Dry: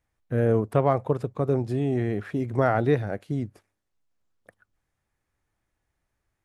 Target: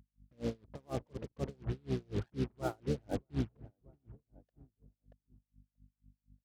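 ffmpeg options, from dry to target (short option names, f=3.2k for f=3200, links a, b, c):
-filter_complex "[0:a]lowpass=f=1.5k:w=0.5412,lowpass=f=1.5k:w=1.3066,bandreject=f=60:t=h:w=6,bandreject=f=120:t=h:w=6,bandreject=f=180:t=h:w=6,asplit=4[a][b][c][d];[b]asetrate=22050,aresample=44100,atempo=2,volume=-3dB[e];[c]asetrate=52444,aresample=44100,atempo=0.840896,volume=-14dB[f];[d]asetrate=55563,aresample=44100,atempo=0.793701,volume=-18dB[g];[a][e][f][g]amix=inputs=4:normalize=0,areverse,acompressor=threshold=-31dB:ratio=10,areverse,alimiter=level_in=6.5dB:limit=-24dB:level=0:latency=1:release=46,volume=-6.5dB,afftfilt=real='re*gte(hypot(re,im),0.00794)':imag='im*gte(hypot(re,im),0.00794)':win_size=1024:overlap=0.75,acrusher=bits=7:mix=0:aa=0.5,aeval=exprs='val(0)+0.000631*(sin(2*PI*50*n/s)+sin(2*PI*2*50*n/s)/2+sin(2*PI*3*50*n/s)/3+sin(2*PI*4*50*n/s)/4+sin(2*PI*5*50*n/s)/5)':c=same,asplit=2[h][i];[i]adelay=632,lowpass=f=910:p=1,volume=-17dB,asplit=2[j][k];[k]adelay=632,lowpass=f=910:p=1,volume=0.35,asplit=2[l][m];[m]adelay=632,lowpass=f=910:p=1,volume=0.35[n];[j][l][n]amix=inputs=3:normalize=0[o];[h][o]amix=inputs=2:normalize=0,aeval=exprs='val(0)*pow(10,-36*(0.5-0.5*cos(2*PI*4.1*n/s))/20)':c=same,volume=7.5dB"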